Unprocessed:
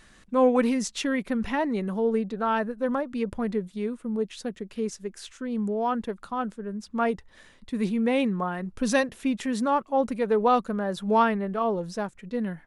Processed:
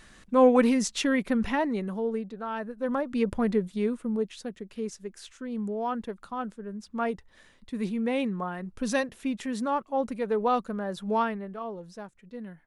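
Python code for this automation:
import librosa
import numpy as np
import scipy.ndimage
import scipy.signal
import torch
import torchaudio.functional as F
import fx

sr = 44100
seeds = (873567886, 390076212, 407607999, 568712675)

y = fx.gain(x, sr, db=fx.line((1.39, 1.5), (2.5, -9.0), (3.18, 2.5), (3.97, 2.5), (4.42, -4.0), (11.08, -4.0), (11.7, -11.0)))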